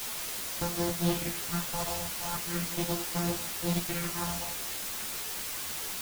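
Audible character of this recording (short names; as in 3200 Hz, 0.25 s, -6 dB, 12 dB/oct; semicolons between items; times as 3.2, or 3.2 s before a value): a buzz of ramps at a fixed pitch in blocks of 256 samples; phasing stages 4, 0.38 Hz, lowest notch 290–2900 Hz; a quantiser's noise floor 6-bit, dither triangular; a shimmering, thickened sound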